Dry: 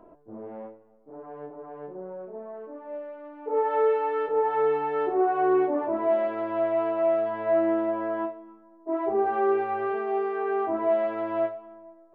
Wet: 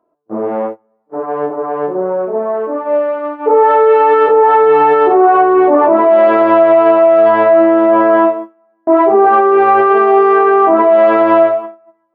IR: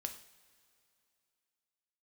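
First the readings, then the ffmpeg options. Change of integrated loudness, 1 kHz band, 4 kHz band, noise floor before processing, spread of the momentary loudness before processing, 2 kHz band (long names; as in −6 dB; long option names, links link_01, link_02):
+16.0 dB, +18.5 dB, can't be measured, −54 dBFS, 18 LU, +18.0 dB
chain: -filter_complex "[0:a]agate=range=-35dB:threshold=-43dB:ratio=16:detection=peak,highpass=frequency=310:poles=1,equalizer=frequency=1200:width=5.7:gain=6,asplit=2[link_01][link_02];[1:a]atrim=start_sample=2205,asetrate=83790,aresample=44100,lowpass=1800[link_03];[link_02][link_03]afir=irnorm=-1:irlink=0,volume=-7dB[link_04];[link_01][link_04]amix=inputs=2:normalize=0,alimiter=level_in=23.5dB:limit=-1dB:release=50:level=0:latency=1,volume=-1dB"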